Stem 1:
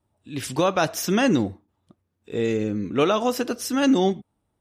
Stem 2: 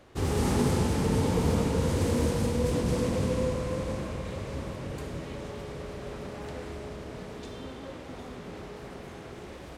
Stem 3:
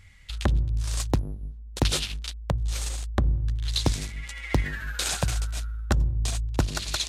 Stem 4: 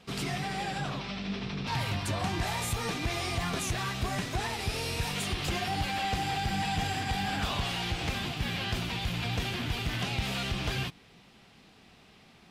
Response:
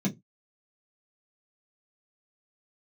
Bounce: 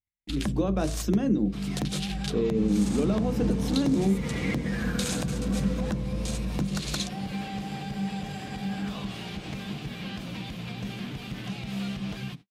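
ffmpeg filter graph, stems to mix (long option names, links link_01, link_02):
-filter_complex "[0:a]equalizer=frequency=400:width=0.83:gain=9.5,alimiter=limit=-9dB:level=0:latency=1:release=159,volume=-13dB,asplit=2[link_01][link_02];[link_02]volume=-11.5dB[link_03];[1:a]lowpass=7100,adelay=2400,volume=-9.5dB,asplit=2[link_04][link_05];[link_05]volume=-15.5dB[link_06];[2:a]volume=1dB,asplit=2[link_07][link_08];[link_08]volume=-22dB[link_09];[3:a]acompressor=threshold=-33dB:ratio=6,adelay=1450,volume=-4dB,asplit=2[link_10][link_11];[link_11]volume=-16dB[link_12];[link_07][link_10]amix=inputs=2:normalize=0,acompressor=threshold=-29dB:ratio=5,volume=0dB[link_13];[4:a]atrim=start_sample=2205[link_14];[link_03][link_06][link_09][link_12]amix=inputs=4:normalize=0[link_15];[link_15][link_14]afir=irnorm=-1:irlink=0[link_16];[link_01][link_04][link_13][link_16]amix=inputs=4:normalize=0,agate=range=-48dB:threshold=-43dB:ratio=16:detection=peak,alimiter=limit=-15dB:level=0:latency=1:release=257"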